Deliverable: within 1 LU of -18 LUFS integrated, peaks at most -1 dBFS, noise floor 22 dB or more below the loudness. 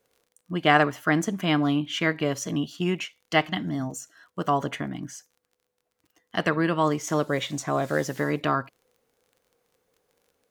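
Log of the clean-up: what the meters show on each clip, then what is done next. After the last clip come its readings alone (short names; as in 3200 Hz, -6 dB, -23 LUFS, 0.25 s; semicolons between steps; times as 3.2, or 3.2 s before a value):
ticks 27/s; loudness -26.0 LUFS; peak -4.0 dBFS; loudness target -18.0 LUFS
-> de-click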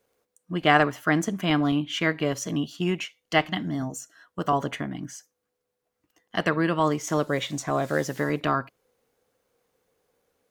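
ticks 0.095/s; loudness -26.0 LUFS; peak -4.0 dBFS; loudness target -18.0 LUFS
-> gain +8 dB; limiter -1 dBFS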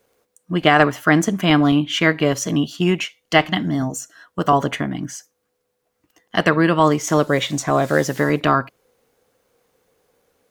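loudness -18.5 LUFS; peak -1.0 dBFS; noise floor -73 dBFS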